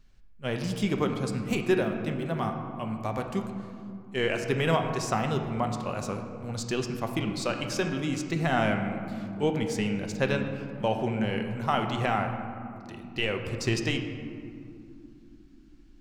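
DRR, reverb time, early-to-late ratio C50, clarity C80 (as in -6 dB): 4.0 dB, 2.9 s, 6.0 dB, 7.5 dB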